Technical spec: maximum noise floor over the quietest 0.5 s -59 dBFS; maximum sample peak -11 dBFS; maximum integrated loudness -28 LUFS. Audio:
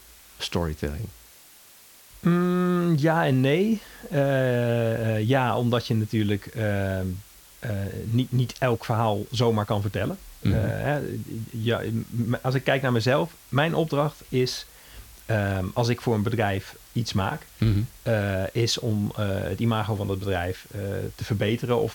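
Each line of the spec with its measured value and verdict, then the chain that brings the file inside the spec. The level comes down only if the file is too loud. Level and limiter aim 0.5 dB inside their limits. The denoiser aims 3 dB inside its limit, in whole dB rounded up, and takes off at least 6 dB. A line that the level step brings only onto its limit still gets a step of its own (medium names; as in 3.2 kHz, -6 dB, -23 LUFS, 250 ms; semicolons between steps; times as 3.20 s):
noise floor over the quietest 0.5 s -51 dBFS: fail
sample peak -7.0 dBFS: fail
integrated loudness -25.5 LUFS: fail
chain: noise reduction 8 dB, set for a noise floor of -51 dBFS; trim -3 dB; peak limiter -11.5 dBFS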